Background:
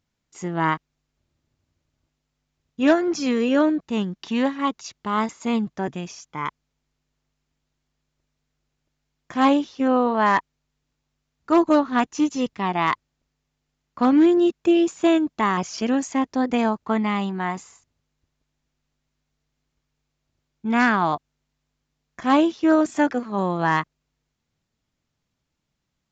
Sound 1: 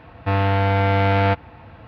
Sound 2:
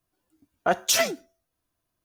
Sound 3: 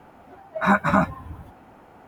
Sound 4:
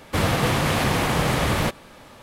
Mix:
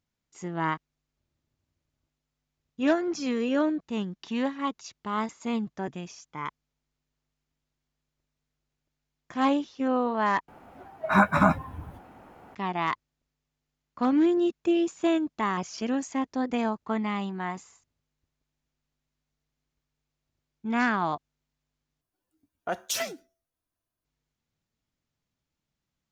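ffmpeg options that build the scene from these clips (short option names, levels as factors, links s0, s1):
-filter_complex "[0:a]volume=0.473,asplit=3[s0][s1][s2];[s0]atrim=end=10.484[s3];[3:a]atrim=end=2.07,asetpts=PTS-STARTPTS,volume=0.841[s4];[s1]atrim=start=12.546:end=22.014[s5];[2:a]atrim=end=2.04,asetpts=PTS-STARTPTS,volume=0.376[s6];[s2]atrim=start=24.046[s7];[s3][s4]acrossfade=d=0.004:c1=hsin:c2=hsin[s8];[s8][s5]acrossfade=d=0.004:c1=hsin:c2=hsin[s9];[s9][s6]acrossfade=d=0.004:c1=hsin:c2=hsin[s10];[s10][s7]acrossfade=d=0.004:c1=hsin:c2=hsin"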